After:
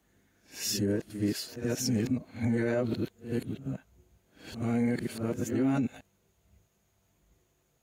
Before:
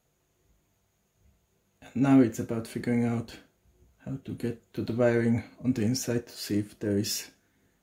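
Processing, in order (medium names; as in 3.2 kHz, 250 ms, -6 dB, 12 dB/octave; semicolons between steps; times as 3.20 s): reverse the whole clip; pre-echo 80 ms -13 dB; peak limiter -20.5 dBFS, peak gain reduction 9 dB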